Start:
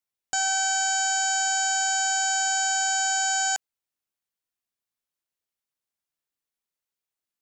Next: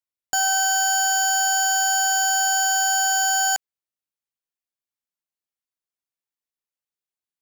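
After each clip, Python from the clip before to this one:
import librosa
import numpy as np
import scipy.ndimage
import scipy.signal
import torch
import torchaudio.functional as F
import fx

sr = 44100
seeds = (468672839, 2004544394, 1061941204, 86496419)

y = fx.leveller(x, sr, passes=3)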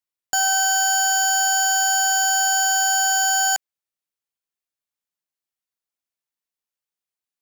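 y = fx.low_shelf(x, sr, hz=450.0, db=-3.0)
y = y * 10.0 ** (1.5 / 20.0)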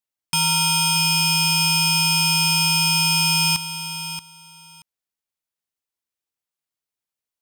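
y = x * np.sin(2.0 * np.pi * 1700.0 * np.arange(len(x)) / sr)
y = fx.echo_feedback(y, sr, ms=629, feedback_pct=17, wet_db=-11.0)
y = y * 10.0 ** (3.0 / 20.0)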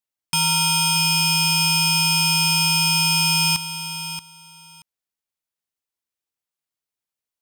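y = x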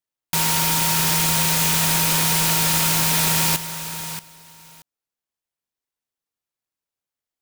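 y = fx.noise_mod_delay(x, sr, seeds[0], noise_hz=5300.0, depth_ms=0.11)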